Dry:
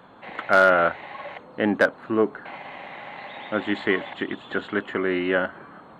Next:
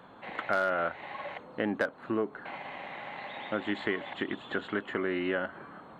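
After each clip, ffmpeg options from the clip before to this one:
-af "acompressor=threshold=-25dB:ratio=3,volume=-3dB"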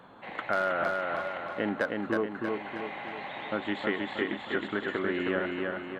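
-af "aecho=1:1:317|634|951|1268|1585|1902:0.708|0.347|0.17|0.0833|0.0408|0.02"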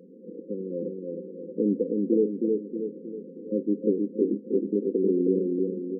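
-af "afftfilt=real='re*between(b*sr/4096,170,530)':imag='im*between(b*sr/4096,170,530)':win_size=4096:overlap=0.75,volume=8dB"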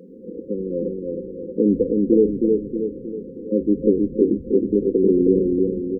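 -filter_complex "[0:a]asplit=6[a][b][c][d][e][f];[b]adelay=80,afreqshift=-150,volume=-21dB[g];[c]adelay=160,afreqshift=-300,volume=-25.6dB[h];[d]adelay=240,afreqshift=-450,volume=-30.2dB[i];[e]adelay=320,afreqshift=-600,volume=-34.7dB[j];[f]adelay=400,afreqshift=-750,volume=-39.3dB[k];[a][g][h][i][j][k]amix=inputs=6:normalize=0,volume=7dB"

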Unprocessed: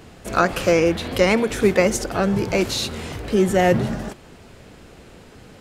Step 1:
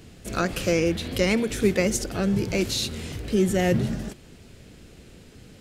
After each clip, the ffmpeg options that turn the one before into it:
-af "equalizer=f=940:t=o:w=1.9:g=-11,volume=-1dB"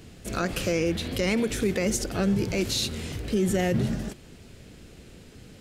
-af "alimiter=limit=-16dB:level=0:latency=1:release=44"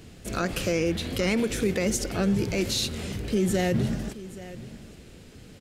-af "aecho=1:1:826:0.15"

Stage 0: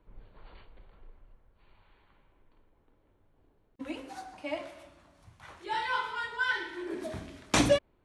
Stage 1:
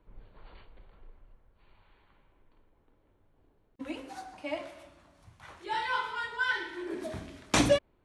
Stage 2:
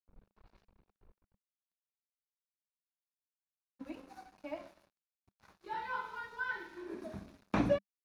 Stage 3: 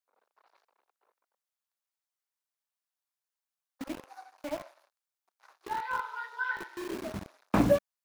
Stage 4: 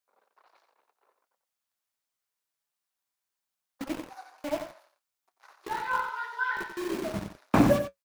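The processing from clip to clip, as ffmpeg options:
-af anull
-filter_complex "[0:a]aeval=exprs='sgn(val(0))*max(abs(val(0))-0.00316,0)':c=same,equalizer=f=200:t=o:w=0.33:g=9,equalizer=f=2k:t=o:w=0.33:g=-5,equalizer=f=3.15k:t=o:w=0.33:g=-8,equalizer=f=8k:t=o:w=0.33:g=-8,acrossover=split=2900[a][b];[b]acompressor=threshold=-57dB:ratio=4:attack=1:release=60[c];[a][c]amix=inputs=2:normalize=0,volume=-6dB"
-filter_complex "[0:a]acrossover=split=550|2300[a][b][c];[a]acrusher=bits=7:mix=0:aa=0.000001[d];[c]aeval=exprs='val(0)*sin(2*PI*130*n/s)':c=same[e];[d][b][e]amix=inputs=3:normalize=0,volume=6.5dB"
-af "flanger=delay=5:depth=3.2:regen=-58:speed=0.31:shape=sinusoidal,aecho=1:1:90:0.376,volume=8dB"

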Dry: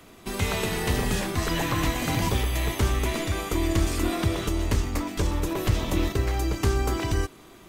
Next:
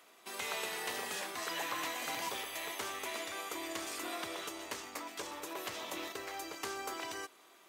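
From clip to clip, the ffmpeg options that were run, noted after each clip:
-af "highpass=590,volume=-8dB"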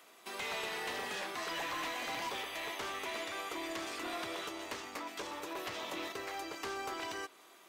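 -filter_complex "[0:a]acrossover=split=5100[a][b];[a]asoftclip=type=hard:threshold=-36.5dB[c];[b]acompressor=threshold=-57dB:ratio=6[d];[c][d]amix=inputs=2:normalize=0,volume=2dB"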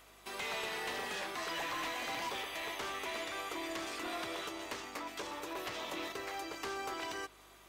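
-af "aeval=exprs='val(0)+0.000398*(sin(2*PI*50*n/s)+sin(2*PI*2*50*n/s)/2+sin(2*PI*3*50*n/s)/3+sin(2*PI*4*50*n/s)/4+sin(2*PI*5*50*n/s)/5)':c=same"

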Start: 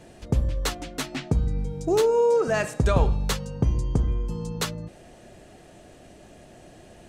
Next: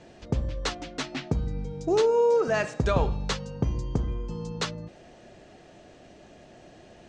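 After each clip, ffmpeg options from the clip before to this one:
-af "lowpass=f=6.5k:w=0.5412,lowpass=f=6.5k:w=1.3066,lowshelf=f=120:g=-6,volume=-1dB"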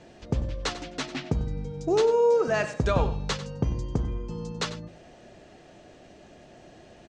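-af "aecho=1:1:95:0.2"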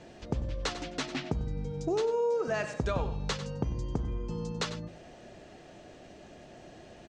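-af "acompressor=threshold=-30dB:ratio=2.5"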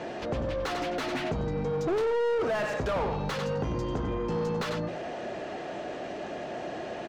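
-filter_complex "[0:a]asplit=2[a][b];[b]highpass=f=720:p=1,volume=31dB,asoftclip=type=tanh:threshold=-17dB[c];[a][c]amix=inputs=2:normalize=0,lowpass=f=1.1k:p=1,volume=-6dB,volume=-3dB"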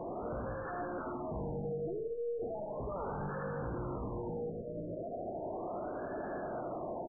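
-af "asoftclip=type=hard:threshold=-38dB,aecho=1:1:76|152|228|304:0.501|0.175|0.0614|0.0215,afftfilt=real='re*lt(b*sr/1024,670*pow(1800/670,0.5+0.5*sin(2*PI*0.36*pts/sr)))':imag='im*lt(b*sr/1024,670*pow(1800/670,0.5+0.5*sin(2*PI*0.36*pts/sr)))':win_size=1024:overlap=0.75"

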